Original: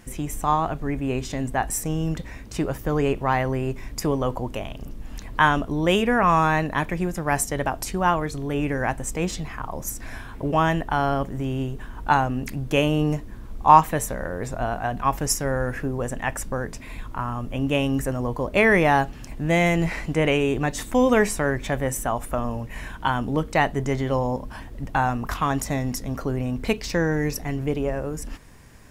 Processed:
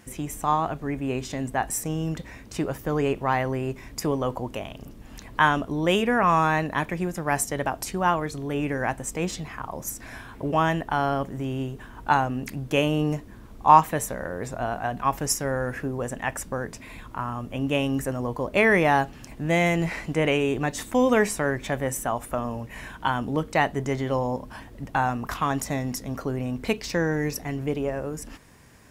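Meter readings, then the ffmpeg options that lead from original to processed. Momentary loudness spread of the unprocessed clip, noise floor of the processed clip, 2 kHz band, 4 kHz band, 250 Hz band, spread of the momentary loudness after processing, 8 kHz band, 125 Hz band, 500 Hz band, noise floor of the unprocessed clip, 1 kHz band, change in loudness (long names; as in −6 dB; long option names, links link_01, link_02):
12 LU, −45 dBFS, −1.5 dB, −1.5 dB, −2.0 dB, 13 LU, −1.5 dB, −3.0 dB, −1.5 dB, −39 dBFS, −1.5 dB, −2.0 dB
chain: -af "highpass=frequency=97:poles=1,volume=-1.5dB"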